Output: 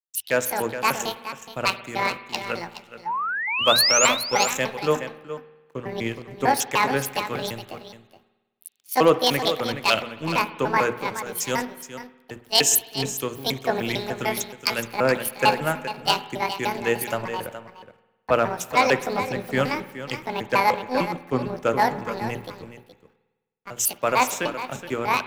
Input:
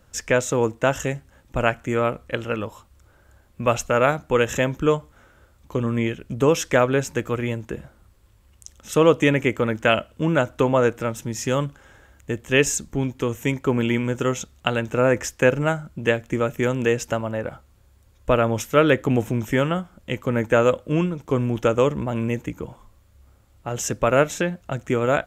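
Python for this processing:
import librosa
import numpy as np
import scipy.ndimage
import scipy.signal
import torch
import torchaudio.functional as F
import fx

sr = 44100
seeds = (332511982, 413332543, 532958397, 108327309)

p1 = fx.pitch_trill(x, sr, semitones=9.0, every_ms=150)
p2 = scipy.signal.sosfilt(scipy.signal.butter(4, 80.0, 'highpass', fs=sr, output='sos'), p1)
p3 = fx.tilt_eq(p2, sr, slope=1.5)
p4 = fx.hum_notches(p3, sr, base_hz=60, count=8)
p5 = fx.rider(p4, sr, range_db=4, speed_s=0.5)
p6 = p4 + F.gain(torch.from_numpy(p5), -2.0).numpy()
p7 = np.sign(p6) * np.maximum(np.abs(p6) - 10.0 ** (-36.0 / 20.0), 0.0)
p8 = fx.rev_spring(p7, sr, rt60_s=2.4, pass_ms=(52,), chirp_ms=55, drr_db=12.5)
p9 = np.clip(p8, -10.0 ** (-4.0 / 20.0), 10.0 ** (-4.0 / 20.0))
p10 = fx.spec_paint(p9, sr, seeds[0], shape='rise', start_s=3.05, length_s=1.02, low_hz=830.0, high_hz=7600.0, level_db=-17.0)
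p11 = p10 + fx.echo_single(p10, sr, ms=421, db=-7.5, dry=0)
p12 = fx.band_widen(p11, sr, depth_pct=70)
y = F.gain(torch.from_numpy(p12), -6.5).numpy()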